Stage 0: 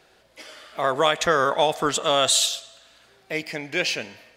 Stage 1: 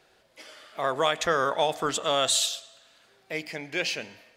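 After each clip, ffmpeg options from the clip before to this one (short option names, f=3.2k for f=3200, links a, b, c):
-af "bandreject=f=60:t=h:w=6,bandreject=f=120:t=h:w=6,bandreject=f=180:t=h:w=6,bandreject=f=240:t=h:w=6,bandreject=f=300:t=h:w=6,volume=-4.5dB"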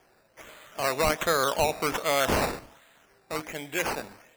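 -af "acrusher=samples=11:mix=1:aa=0.000001:lfo=1:lforange=6.6:lforate=1.3"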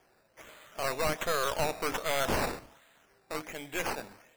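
-af "aeval=exprs='(tanh(14.1*val(0)+0.7)-tanh(0.7))/14.1':c=same"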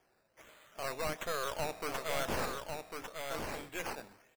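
-af "aecho=1:1:1099:0.562,volume=-6.5dB"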